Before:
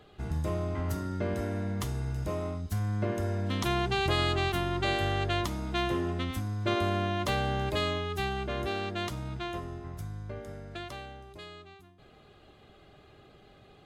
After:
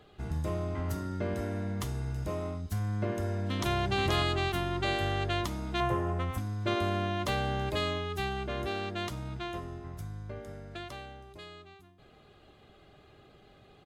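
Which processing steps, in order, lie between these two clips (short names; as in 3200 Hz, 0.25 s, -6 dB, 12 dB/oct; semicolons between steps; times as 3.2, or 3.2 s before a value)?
3.11–3.74 echo throw 0.48 s, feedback 10%, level -4.5 dB; 5.8–6.38 graphic EQ 125/250/500/1000/4000 Hz +9/-10/+6/+6/-11 dB; gain -1.5 dB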